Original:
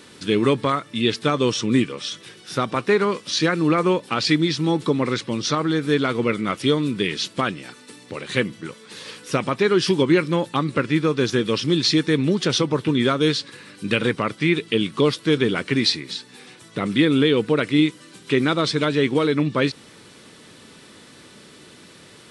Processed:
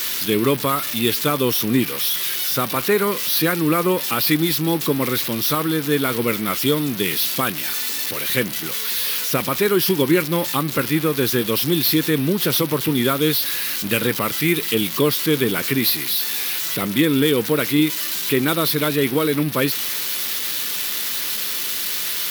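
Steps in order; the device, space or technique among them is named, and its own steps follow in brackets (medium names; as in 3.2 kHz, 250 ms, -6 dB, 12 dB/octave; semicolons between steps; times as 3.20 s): budget class-D amplifier (dead-time distortion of 0.061 ms; zero-crossing glitches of -10.5 dBFS)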